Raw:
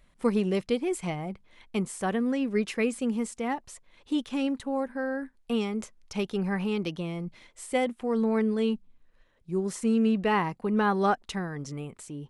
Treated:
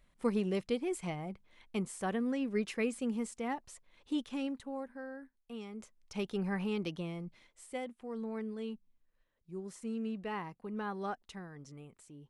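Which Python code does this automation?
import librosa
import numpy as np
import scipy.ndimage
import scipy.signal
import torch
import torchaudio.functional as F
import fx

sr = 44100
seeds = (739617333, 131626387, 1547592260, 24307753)

y = fx.gain(x, sr, db=fx.line((4.18, -6.5), (5.52, -17.5), (6.26, -6.0), (7.03, -6.0), (7.83, -14.0)))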